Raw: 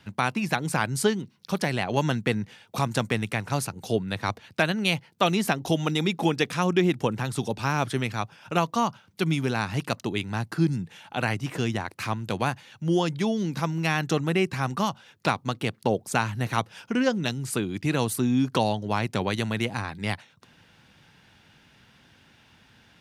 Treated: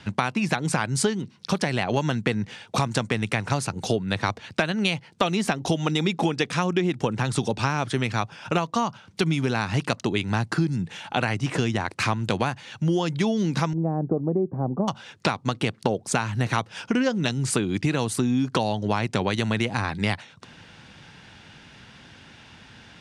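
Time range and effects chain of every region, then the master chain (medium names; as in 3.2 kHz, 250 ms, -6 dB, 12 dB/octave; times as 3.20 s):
13.73–14.88 s: inverse Chebyshev low-pass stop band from 3.8 kHz, stop band 80 dB + peaking EQ 63 Hz -12.5 dB 1.9 oct
whole clip: low-pass 9.1 kHz 24 dB/octave; compression, threshold -29 dBFS; trim +9 dB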